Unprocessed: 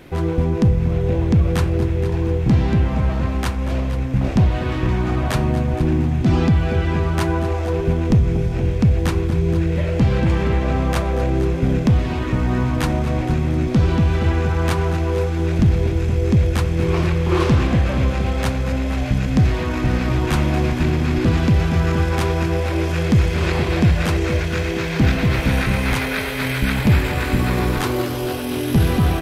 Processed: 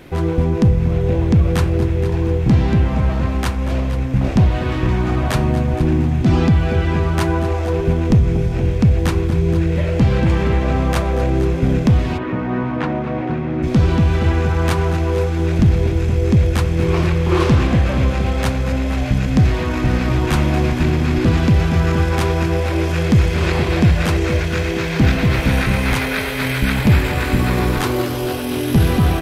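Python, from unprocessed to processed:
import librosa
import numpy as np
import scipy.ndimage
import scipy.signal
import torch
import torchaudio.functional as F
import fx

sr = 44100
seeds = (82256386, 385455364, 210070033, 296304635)

y = fx.bandpass_edges(x, sr, low_hz=170.0, high_hz=2200.0, at=(12.17, 13.62), fade=0.02)
y = y * librosa.db_to_amplitude(2.0)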